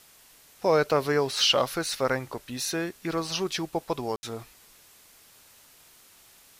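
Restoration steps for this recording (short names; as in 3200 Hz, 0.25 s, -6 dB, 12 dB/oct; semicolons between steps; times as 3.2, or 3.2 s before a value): room tone fill 4.16–4.23; denoiser 16 dB, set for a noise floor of -56 dBFS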